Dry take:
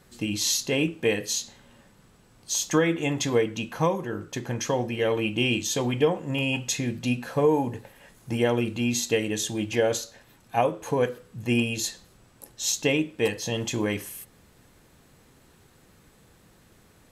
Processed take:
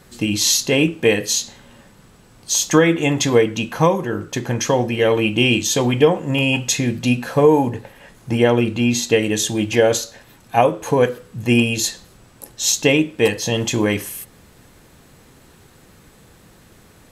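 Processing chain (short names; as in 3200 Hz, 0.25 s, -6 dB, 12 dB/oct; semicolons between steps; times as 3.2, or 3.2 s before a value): 7.69–9.23 high shelf 6300 Hz -7 dB; gain +8.5 dB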